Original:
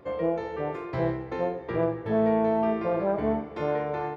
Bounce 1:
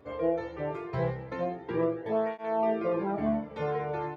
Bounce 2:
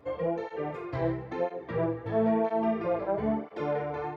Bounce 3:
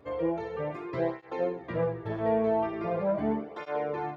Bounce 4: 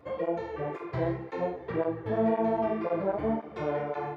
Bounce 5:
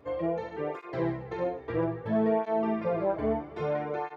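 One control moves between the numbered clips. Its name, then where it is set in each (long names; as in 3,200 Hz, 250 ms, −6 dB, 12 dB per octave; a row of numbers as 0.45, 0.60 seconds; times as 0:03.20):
through-zero flanger with one copy inverted, nulls at: 0.21, 1, 0.41, 1.9, 0.61 Hertz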